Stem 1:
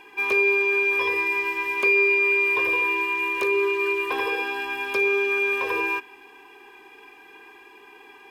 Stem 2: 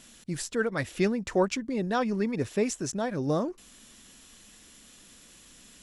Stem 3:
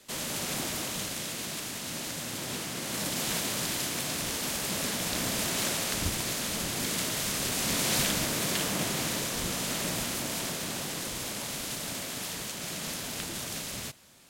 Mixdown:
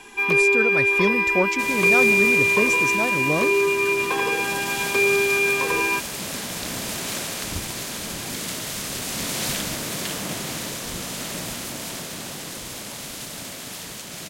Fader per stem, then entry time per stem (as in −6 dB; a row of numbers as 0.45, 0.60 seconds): +2.5, +2.5, +1.0 decibels; 0.00, 0.00, 1.50 seconds